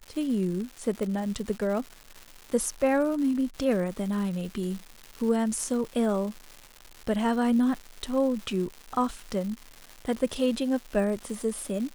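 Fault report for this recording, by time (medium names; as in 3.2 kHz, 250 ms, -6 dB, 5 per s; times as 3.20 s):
crackle 330 per s -35 dBFS
1.03 s: pop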